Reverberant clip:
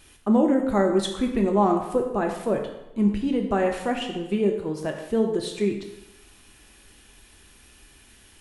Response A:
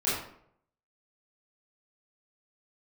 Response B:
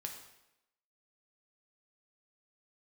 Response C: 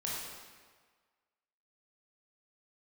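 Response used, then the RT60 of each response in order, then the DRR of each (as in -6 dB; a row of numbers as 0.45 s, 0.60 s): B; 0.65 s, 0.90 s, 1.5 s; -11.0 dB, 2.0 dB, -5.5 dB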